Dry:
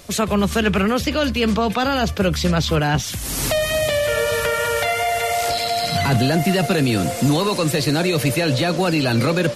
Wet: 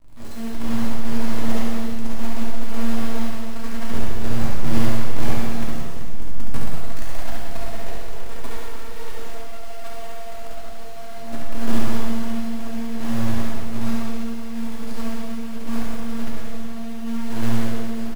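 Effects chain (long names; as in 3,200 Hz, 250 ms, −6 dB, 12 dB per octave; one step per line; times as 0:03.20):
phases set to zero 228 Hz
drawn EQ curve 100 Hz 0 dB, 180 Hz −12 dB, 2,700 Hz −28 dB, 5,500 Hz −23 dB, 8,300 Hz −21 dB
in parallel at −10 dB: bit-depth reduction 8 bits, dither none
on the sum: flanger 1.3 Hz, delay 8.8 ms, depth 8 ms, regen −33%
RIAA equalisation playback
phase-vocoder stretch with locked phases 1.9×
log-companded quantiser 4 bits
on a send: reverse bouncing-ball delay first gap 70 ms, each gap 1.5×, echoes 5
on the sum: reverb whose tail is shaped and stops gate 460 ms falling, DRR −4.5 dB
level −10 dB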